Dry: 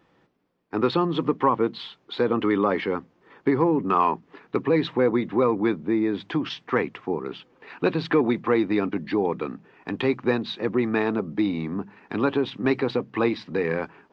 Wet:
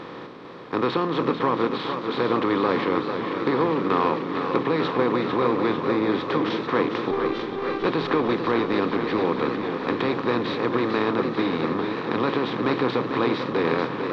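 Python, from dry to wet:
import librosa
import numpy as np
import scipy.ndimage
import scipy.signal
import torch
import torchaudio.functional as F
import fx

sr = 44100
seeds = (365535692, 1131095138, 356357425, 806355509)

y = fx.bin_compress(x, sr, power=0.4)
y = fx.robotise(y, sr, hz=394.0, at=(7.11, 7.85))
y = fx.echo_warbled(y, sr, ms=447, feedback_pct=77, rate_hz=2.8, cents=82, wet_db=-7.5)
y = y * 10.0 ** (-6.5 / 20.0)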